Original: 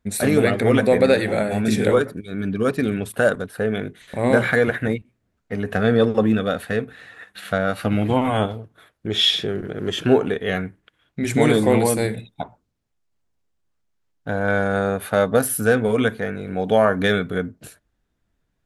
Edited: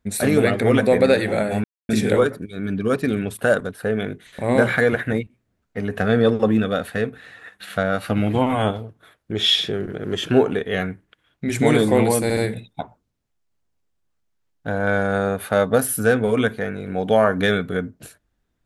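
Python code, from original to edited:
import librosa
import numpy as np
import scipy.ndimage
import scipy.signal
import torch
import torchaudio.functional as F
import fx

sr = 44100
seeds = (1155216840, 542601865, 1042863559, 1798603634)

y = fx.edit(x, sr, fx.insert_silence(at_s=1.64, length_s=0.25),
    fx.stutter(start_s=11.98, slice_s=0.07, count=3), tone=tone)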